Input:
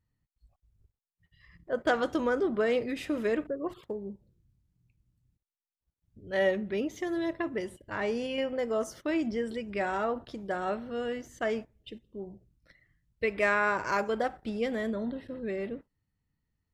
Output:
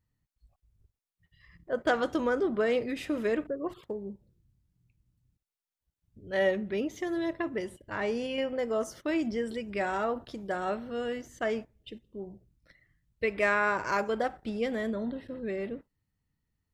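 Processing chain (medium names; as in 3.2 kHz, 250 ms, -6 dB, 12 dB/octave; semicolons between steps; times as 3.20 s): 9.06–11.22 s: treble shelf 6 kHz +4.5 dB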